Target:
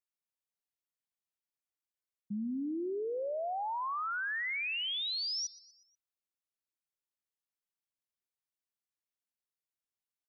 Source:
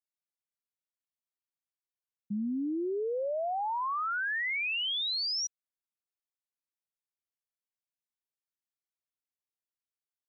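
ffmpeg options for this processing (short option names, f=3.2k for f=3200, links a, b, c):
-af "aecho=1:1:121|242|363|484:0.1|0.052|0.027|0.0141,volume=-3.5dB"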